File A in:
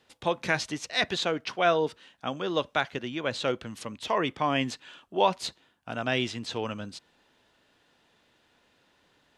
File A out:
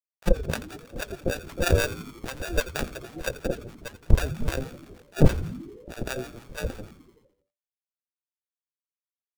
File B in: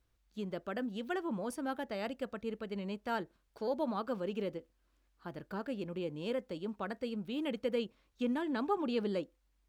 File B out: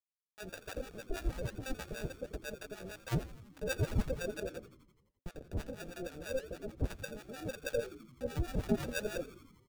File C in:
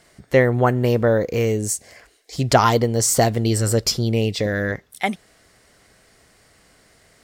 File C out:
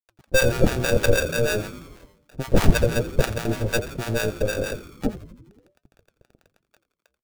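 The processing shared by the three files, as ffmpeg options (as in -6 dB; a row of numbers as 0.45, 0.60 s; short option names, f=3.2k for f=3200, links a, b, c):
-filter_complex "[0:a]highpass=85,aecho=1:1:2.1:0.54,adynamicequalizer=threshold=0.0398:dfrequency=530:dqfactor=1:tfrequency=530:tqfactor=1:attack=5:release=100:ratio=0.375:range=1.5:mode=boostabove:tftype=bell,lowpass=f=1.1k:t=q:w=12,acrusher=samples=42:mix=1:aa=0.000001,aeval=exprs='3.35*(cos(1*acos(clip(val(0)/3.35,-1,1)))-cos(1*PI/2))+1.33*(cos(4*acos(clip(val(0)/3.35,-1,1)))-cos(4*PI/2))+0.376*(cos(6*acos(clip(val(0)/3.35,-1,1)))-cos(6*PI/2))+0.531*(cos(8*acos(clip(val(0)/3.35,-1,1)))-cos(8*PI/2))':c=same,acrusher=bits=6:mix=0:aa=0.000001,flanger=delay=3.5:depth=4.2:regen=-83:speed=1.2:shape=sinusoidal,asoftclip=type=tanh:threshold=-4dB,acrossover=split=670[a][b];[a]aeval=exprs='val(0)*(1-1/2+1/2*cos(2*PI*6.3*n/s))':c=same[c];[b]aeval=exprs='val(0)*(1-1/2-1/2*cos(2*PI*6.3*n/s))':c=same[d];[c][d]amix=inputs=2:normalize=0,asplit=2[e][f];[f]asplit=7[g][h][i][j][k][l][m];[g]adelay=85,afreqshift=-84,volume=-15dB[n];[h]adelay=170,afreqshift=-168,volume=-18.7dB[o];[i]adelay=255,afreqshift=-252,volume=-22.5dB[p];[j]adelay=340,afreqshift=-336,volume=-26.2dB[q];[k]adelay=425,afreqshift=-420,volume=-30dB[r];[l]adelay=510,afreqshift=-504,volume=-33.7dB[s];[m]adelay=595,afreqshift=-588,volume=-37.5dB[t];[n][o][p][q][r][s][t]amix=inputs=7:normalize=0[u];[e][u]amix=inputs=2:normalize=0,volume=1.5dB"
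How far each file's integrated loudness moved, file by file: +0.5, -2.0, -4.0 LU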